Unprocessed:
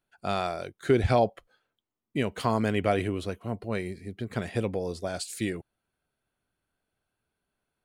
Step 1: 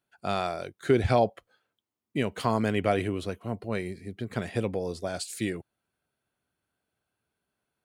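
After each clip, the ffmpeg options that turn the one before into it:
ffmpeg -i in.wav -af "highpass=69" out.wav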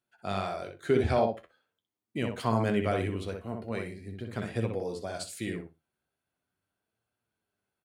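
ffmpeg -i in.wav -filter_complex "[0:a]asplit=2[link_01][link_02];[link_02]adelay=62,lowpass=frequency=2600:poles=1,volume=-4dB,asplit=2[link_03][link_04];[link_04]adelay=62,lowpass=frequency=2600:poles=1,volume=0.19,asplit=2[link_05][link_06];[link_06]adelay=62,lowpass=frequency=2600:poles=1,volume=0.19[link_07];[link_03][link_05][link_07]amix=inputs=3:normalize=0[link_08];[link_01][link_08]amix=inputs=2:normalize=0,flanger=delay=8.1:depth=5.3:regen=58:speed=0.42:shape=triangular" out.wav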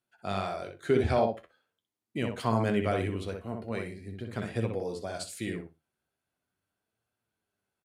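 ffmpeg -i in.wav -af "aresample=32000,aresample=44100" out.wav

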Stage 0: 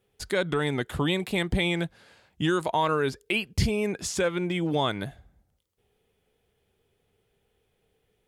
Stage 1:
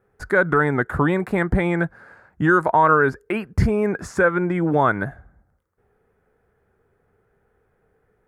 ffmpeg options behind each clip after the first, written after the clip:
ffmpeg -i in.wav -af "highshelf=frequency=2200:width_type=q:width=3:gain=-13,volume=6.5dB" out.wav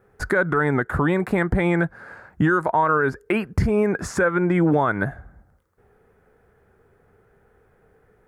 ffmpeg -i in.wav -af "alimiter=limit=-17dB:level=0:latency=1:release=348,volume=6.5dB" out.wav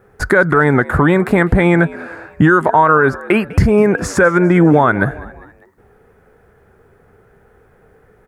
ffmpeg -i in.wav -filter_complex "[0:a]asplit=4[link_01][link_02][link_03][link_04];[link_02]adelay=201,afreqshift=81,volume=-20dB[link_05];[link_03]adelay=402,afreqshift=162,volume=-26.7dB[link_06];[link_04]adelay=603,afreqshift=243,volume=-33.5dB[link_07];[link_01][link_05][link_06][link_07]amix=inputs=4:normalize=0,volume=8.5dB" out.wav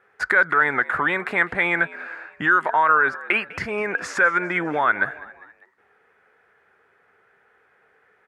ffmpeg -i in.wav -af "bandpass=frequency=2200:width_type=q:width=1.1:csg=0" out.wav

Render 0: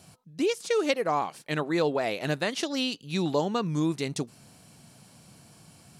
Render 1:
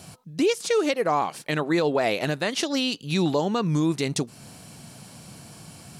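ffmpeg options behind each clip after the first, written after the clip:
ffmpeg -i in.wav -af "alimiter=limit=-22.5dB:level=0:latency=1:release=260,volume=9dB" out.wav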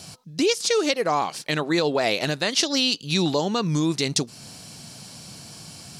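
ffmpeg -i in.wav -af "equalizer=frequency=5000:width_type=o:width=1.3:gain=9.5" out.wav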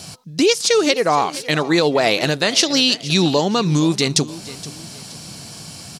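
ffmpeg -i in.wav -af "aecho=1:1:470|940|1410:0.141|0.048|0.0163,volume=6dB" out.wav

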